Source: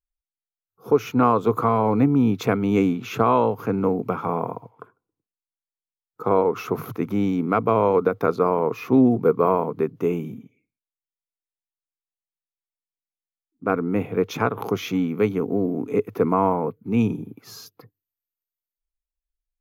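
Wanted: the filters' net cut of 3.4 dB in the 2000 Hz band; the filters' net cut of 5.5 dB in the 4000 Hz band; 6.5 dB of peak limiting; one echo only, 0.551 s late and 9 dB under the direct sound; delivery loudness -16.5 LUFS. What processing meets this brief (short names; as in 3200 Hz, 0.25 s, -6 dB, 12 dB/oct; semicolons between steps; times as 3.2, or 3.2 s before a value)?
bell 2000 Hz -3.5 dB; bell 4000 Hz -6 dB; limiter -13 dBFS; echo 0.551 s -9 dB; gain +8 dB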